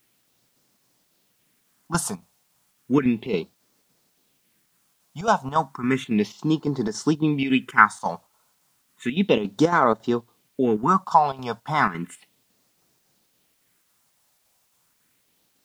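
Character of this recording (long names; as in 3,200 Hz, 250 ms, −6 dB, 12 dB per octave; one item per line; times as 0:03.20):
chopped level 3.6 Hz, depth 60%, duty 75%
phaser sweep stages 4, 0.33 Hz, lowest notch 320–2,600 Hz
a quantiser's noise floor 12 bits, dither triangular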